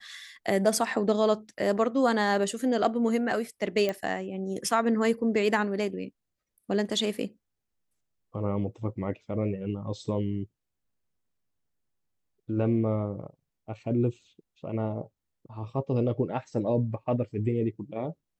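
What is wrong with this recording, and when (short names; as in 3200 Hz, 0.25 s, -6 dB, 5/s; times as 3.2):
3.89 pop -16 dBFS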